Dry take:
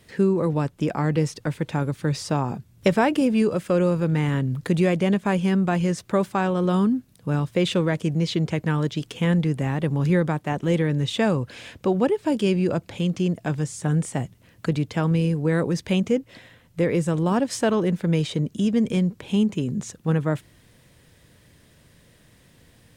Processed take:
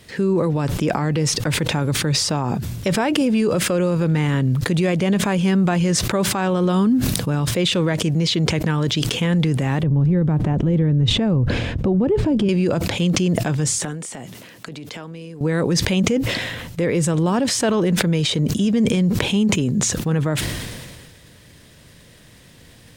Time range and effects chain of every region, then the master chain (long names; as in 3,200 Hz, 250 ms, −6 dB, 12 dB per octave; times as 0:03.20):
0:09.83–0:12.49: spectral tilt −4.5 dB per octave + downward compressor 8 to 1, threshold −21 dBFS
0:13.78–0:15.41: high-pass filter 230 Hz + downward compressor 16 to 1, threshold −37 dBFS
whole clip: parametric band 4,500 Hz +3.5 dB 1.8 octaves; boost into a limiter +17 dB; level that may fall only so fast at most 32 dB per second; level −10.5 dB